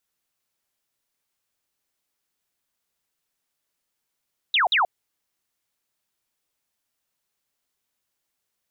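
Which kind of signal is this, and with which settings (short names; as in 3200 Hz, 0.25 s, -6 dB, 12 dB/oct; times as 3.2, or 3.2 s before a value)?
burst of laser zaps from 4000 Hz, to 650 Hz, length 0.13 s sine, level -16.5 dB, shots 2, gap 0.05 s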